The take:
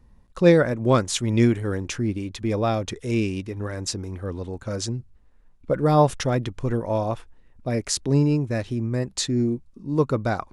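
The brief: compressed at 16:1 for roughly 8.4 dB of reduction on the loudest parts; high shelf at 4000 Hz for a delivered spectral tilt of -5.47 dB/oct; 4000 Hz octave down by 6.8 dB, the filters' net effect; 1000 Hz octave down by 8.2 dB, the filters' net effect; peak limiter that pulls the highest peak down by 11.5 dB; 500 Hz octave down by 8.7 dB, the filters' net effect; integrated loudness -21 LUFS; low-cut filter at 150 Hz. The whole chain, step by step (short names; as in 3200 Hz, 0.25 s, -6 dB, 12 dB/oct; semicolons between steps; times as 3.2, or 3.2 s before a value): HPF 150 Hz; bell 500 Hz -9 dB; bell 1000 Hz -7 dB; high shelf 4000 Hz -3.5 dB; bell 4000 Hz -6 dB; compressor 16:1, threshold -24 dBFS; gain +13.5 dB; limiter -10 dBFS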